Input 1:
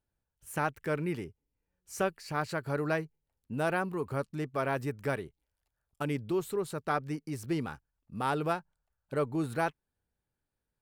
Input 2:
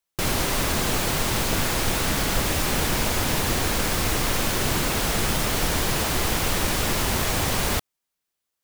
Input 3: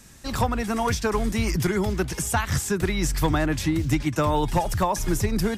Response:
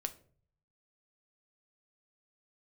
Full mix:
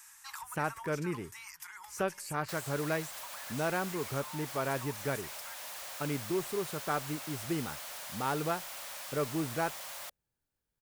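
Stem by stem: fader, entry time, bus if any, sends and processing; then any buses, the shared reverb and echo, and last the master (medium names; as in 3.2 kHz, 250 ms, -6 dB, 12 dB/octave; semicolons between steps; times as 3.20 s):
-3.0 dB, 0.00 s, no bus, send -20.5 dB, none
-12.5 dB, 2.30 s, bus A, no send, elliptic high-pass 560 Hz; hard clipper -29 dBFS, distortion -8 dB
-0.5 dB, 0.00 s, bus A, no send, elliptic high-pass 890 Hz, stop band 40 dB; peaking EQ 3.9 kHz -8.5 dB 1.3 oct; compression, threshold -31 dBFS, peak gain reduction 8.5 dB; auto duck -11 dB, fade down 0.90 s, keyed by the first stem
bus A: 0.0 dB, treble shelf 6.3 kHz +4.5 dB; compression, threshold -41 dBFS, peak gain reduction 7 dB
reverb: on, RT60 0.50 s, pre-delay 6 ms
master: none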